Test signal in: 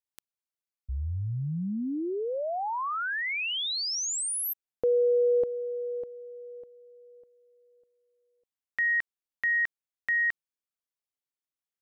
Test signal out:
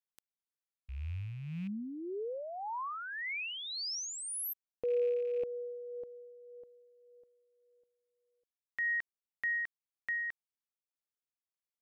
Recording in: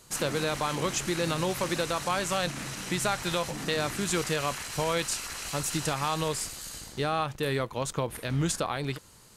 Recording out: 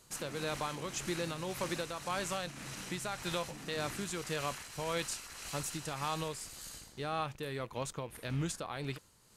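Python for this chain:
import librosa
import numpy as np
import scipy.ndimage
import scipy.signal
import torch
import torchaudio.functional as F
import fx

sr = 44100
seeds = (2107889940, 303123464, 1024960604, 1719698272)

y = fx.rattle_buzz(x, sr, strikes_db=-41.0, level_db=-38.0)
y = y * (1.0 - 0.44 / 2.0 + 0.44 / 2.0 * np.cos(2.0 * np.pi * 1.8 * (np.arange(len(y)) / sr)))
y = F.gain(torch.from_numpy(y), -6.5).numpy()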